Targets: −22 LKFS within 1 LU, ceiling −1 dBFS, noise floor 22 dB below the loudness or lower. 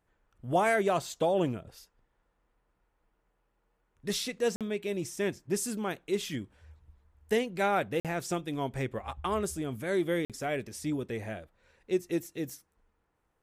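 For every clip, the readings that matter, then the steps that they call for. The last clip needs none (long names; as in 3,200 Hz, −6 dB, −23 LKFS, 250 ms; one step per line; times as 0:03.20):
number of dropouts 3; longest dropout 47 ms; integrated loudness −32.0 LKFS; sample peak −14.5 dBFS; target loudness −22.0 LKFS
→ repair the gap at 0:04.56/0:08.00/0:10.25, 47 ms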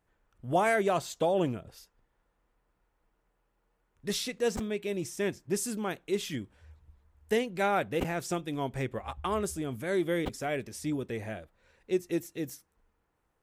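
number of dropouts 0; integrated loudness −32.0 LKFS; sample peak −14.5 dBFS; target loudness −22.0 LKFS
→ level +10 dB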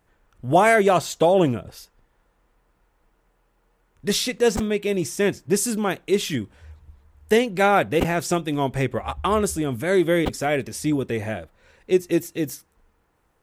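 integrated loudness −22.0 LKFS; sample peak −4.5 dBFS; background noise floor −67 dBFS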